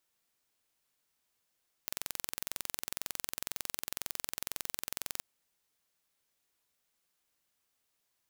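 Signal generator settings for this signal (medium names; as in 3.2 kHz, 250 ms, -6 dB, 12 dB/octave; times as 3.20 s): pulse train 22 per s, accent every 0, -8 dBFS 3.33 s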